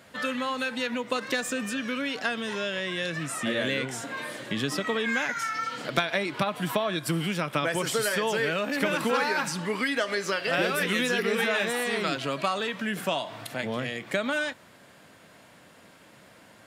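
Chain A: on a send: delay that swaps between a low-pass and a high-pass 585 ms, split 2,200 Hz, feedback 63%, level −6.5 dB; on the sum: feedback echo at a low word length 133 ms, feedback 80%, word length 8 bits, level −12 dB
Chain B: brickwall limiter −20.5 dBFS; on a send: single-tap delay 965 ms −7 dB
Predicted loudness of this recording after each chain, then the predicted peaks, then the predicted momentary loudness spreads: −27.0, −30.0 LKFS; −10.0, −17.5 dBFS; 9, 4 LU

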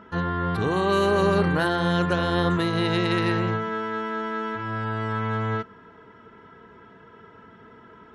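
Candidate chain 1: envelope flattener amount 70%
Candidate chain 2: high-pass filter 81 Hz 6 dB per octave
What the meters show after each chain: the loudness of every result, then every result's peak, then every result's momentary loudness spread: −22.0, −24.5 LKFS; −8.5, −11.0 dBFS; 8, 8 LU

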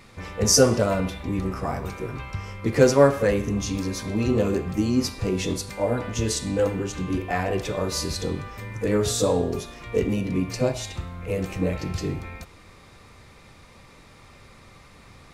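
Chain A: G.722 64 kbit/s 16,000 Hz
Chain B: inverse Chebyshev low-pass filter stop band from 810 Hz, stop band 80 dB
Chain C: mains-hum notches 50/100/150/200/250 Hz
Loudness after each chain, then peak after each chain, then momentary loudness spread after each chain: −24.5, −35.0, −25.0 LKFS; −3.0, −16.5, −4.0 dBFS; 14, 7, 15 LU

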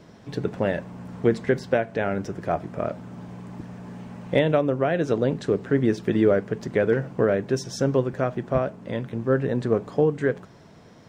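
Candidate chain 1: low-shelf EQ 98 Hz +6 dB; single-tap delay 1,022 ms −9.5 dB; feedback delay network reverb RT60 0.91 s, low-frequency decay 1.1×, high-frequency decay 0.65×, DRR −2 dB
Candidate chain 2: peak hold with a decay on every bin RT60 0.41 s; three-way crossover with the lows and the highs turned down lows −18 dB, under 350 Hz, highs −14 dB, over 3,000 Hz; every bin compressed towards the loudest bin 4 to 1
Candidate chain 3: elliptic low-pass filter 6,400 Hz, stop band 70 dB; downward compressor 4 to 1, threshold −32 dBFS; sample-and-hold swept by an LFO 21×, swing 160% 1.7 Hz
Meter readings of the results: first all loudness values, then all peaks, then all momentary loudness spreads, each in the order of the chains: −18.5, −27.0, −36.0 LKFS; −1.0, −10.0, −19.0 dBFS; 15, 5, 6 LU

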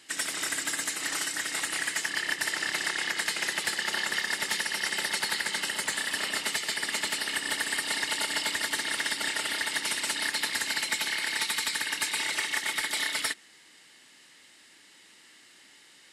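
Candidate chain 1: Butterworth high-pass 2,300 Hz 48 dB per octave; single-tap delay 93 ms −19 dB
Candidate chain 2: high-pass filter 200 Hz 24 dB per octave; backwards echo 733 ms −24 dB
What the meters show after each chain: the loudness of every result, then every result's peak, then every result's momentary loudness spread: −30.5, −28.5 LKFS; −17.0, −16.5 dBFS; 2, 2 LU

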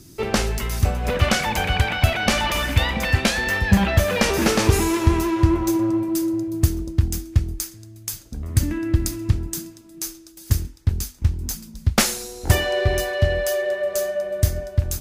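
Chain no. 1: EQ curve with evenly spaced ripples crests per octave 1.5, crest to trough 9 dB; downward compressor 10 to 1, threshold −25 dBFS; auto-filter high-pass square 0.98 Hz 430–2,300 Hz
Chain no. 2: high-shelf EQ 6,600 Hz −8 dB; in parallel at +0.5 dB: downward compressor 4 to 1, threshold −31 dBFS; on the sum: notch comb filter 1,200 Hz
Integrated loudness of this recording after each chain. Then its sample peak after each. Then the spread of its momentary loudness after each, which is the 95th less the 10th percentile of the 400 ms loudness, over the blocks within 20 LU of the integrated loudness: −29.5, −22.0 LKFS; −9.0, −3.0 dBFS; 14, 13 LU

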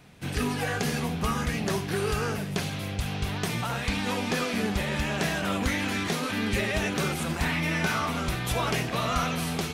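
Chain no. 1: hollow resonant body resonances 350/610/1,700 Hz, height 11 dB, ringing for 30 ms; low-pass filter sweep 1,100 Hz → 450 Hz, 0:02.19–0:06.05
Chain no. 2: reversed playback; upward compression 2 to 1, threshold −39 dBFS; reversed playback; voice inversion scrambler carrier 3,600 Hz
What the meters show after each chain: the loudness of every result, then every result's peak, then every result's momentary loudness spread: −23.5, −25.5 LKFS; −7.0, −13.0 dBFS; 6, 3 LU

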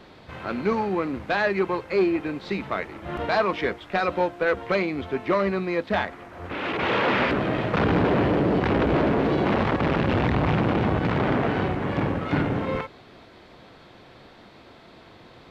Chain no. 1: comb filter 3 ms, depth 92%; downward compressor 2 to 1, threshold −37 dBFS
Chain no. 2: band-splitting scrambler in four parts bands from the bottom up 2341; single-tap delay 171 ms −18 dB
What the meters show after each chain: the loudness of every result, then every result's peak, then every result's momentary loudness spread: −32.5, −20.5 LKFS; −18.0, −10.0 dBFS; 16, 10 LU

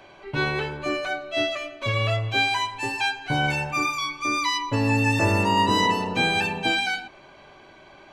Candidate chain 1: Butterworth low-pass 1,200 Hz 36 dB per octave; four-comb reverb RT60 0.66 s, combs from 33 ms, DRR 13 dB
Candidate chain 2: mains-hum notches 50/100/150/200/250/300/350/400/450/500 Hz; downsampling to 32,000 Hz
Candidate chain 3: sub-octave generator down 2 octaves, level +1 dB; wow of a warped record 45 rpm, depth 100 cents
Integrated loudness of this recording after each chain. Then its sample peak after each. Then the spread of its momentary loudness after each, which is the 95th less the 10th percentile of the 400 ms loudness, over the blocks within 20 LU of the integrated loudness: −26.5, −24.0, −23.0 LKFS; −10.0, −10.0, −7.5 dBFS; 10, 8, 8 LU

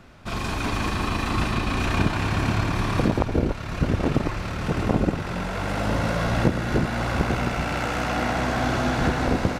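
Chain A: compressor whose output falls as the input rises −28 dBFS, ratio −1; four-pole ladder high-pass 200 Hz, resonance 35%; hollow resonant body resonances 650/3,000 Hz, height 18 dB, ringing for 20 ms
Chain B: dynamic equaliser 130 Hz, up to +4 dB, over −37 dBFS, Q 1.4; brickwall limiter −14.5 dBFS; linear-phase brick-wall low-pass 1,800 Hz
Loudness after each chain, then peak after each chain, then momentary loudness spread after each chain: −28.5, −26.0 LKFS; −11.0, −14.0 dBFS; 7, 4 LU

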